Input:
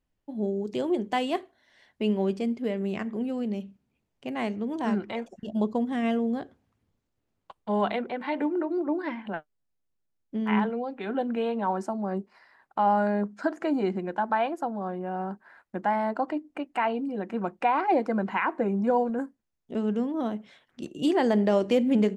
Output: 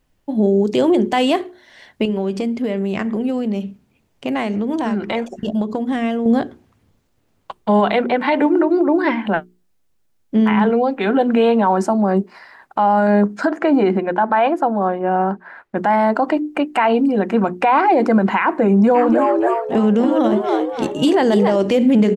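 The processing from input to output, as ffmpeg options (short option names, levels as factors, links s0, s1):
-filter_complex "[0:a]asettb=1/sr,asplit=3[s0][s1][s2];[s0]atrim=end=2.054[s3];[s1]atrim=start=2.05:end=6.26,asetpts=PTS-STARTPTS,afade=t=in:d=0.004:c=qsin,afade=t=out:st=4.206:d=0.004:c=qsin,acompressor=threshold=0.0251:ratio=6:attack=3.2:release=140:knee=1:detection=peak[s4];[s2]atrim=start=6.256[s5];[s3][s4]acrossfade=d=0.004:c1=hsin:c2=qsin[s6];[s6][s5]acrossfade=d=0.004:c1=qsin:c2=hsin,asettb=1/sr,asplit=3[s7][s8][s9];[s7]atrim=end=13.474[s10];[s8]atrim=start=13.47:end=15.77,asetpts=PTS-STARTPTS,afade=t=in:d=0.004:c=qsin,afade=t=out:st=2.296:d=0.004:c=qsin,bass=f=250:g=-4,treble=f=4000:g=-12[s11];[s9]atrim=start=15.766[s12];[s10][s11]acrossfade=d=0.004:c1=hsin:c2=qsin[s13];[s13][s12]acrossfade=d=0.004:c1=qsin:c2=hsin,asplit=3[s14][s15][s16];[s14]afade=t=out:st=18.94:d=0.02[s17];[s15]asplit=6[s18][s19][s20][s21][s22][s23];[s19]adelay=282,afreqshift=100,volume=0.631[s24];[s20]adelay=564,afreqshift=200,volume=0.24[s25];[s21]adelay=846,afreqshift=300,volume=0.0912[s26];[s22]adelay=1128,afreqshift=400,volume=0.0347[s27];[s23]adelay=1410,afreqshift=500,volume=0.0132[s28];[s18][s24][s25][s26][s27][s28]amix=inputs=6:normalize=0,afade=t=in:st=18.94:d=0.02,afade=t=out:st=21.55:d=0.02[s29];[s16]afade=t=in:st=21.55:d=0.02[s30];[s17][s29][s30]amix=inputs=3:normalize=0,bandreject=f=60:t=h:w=6,bandreject=f=120:t=h:w=6,bandreject=f=180:t=h:w=6,bandreject=f=240:t=h:w=6,bandreject=f=300:t=h:w=6,bandreject=f=360:t=h:w=6,bandreject=f=420:t=h:w=6,alimiter=level_in=11.9:limit=0.891:release=50:level=0:latency=1,volume=0.501"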